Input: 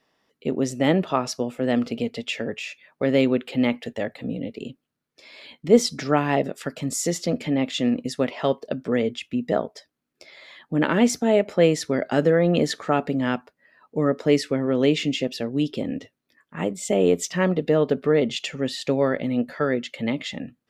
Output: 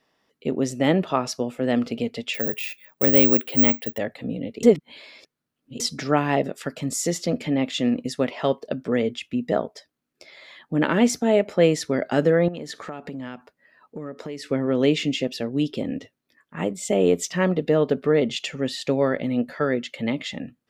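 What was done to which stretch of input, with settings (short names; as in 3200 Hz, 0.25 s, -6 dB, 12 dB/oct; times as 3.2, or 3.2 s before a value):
2.34–3.98 careless resampling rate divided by 2×, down none, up zero stuff
4.63–5.8 reverse
12.48–14.47 compressor, threshold -30 dBFS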